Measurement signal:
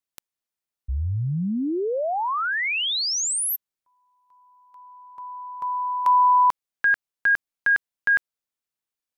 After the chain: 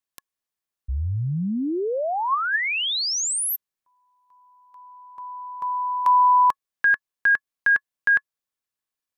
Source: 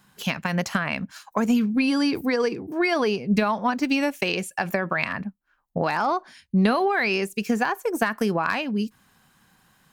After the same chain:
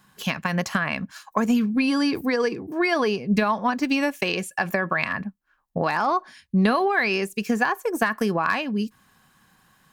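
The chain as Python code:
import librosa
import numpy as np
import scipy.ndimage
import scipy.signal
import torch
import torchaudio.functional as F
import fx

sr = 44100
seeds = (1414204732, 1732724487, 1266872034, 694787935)

y = fx.small_body(x, sr, hz=(1100.0, 1700.0), ring_ms=50, db=7)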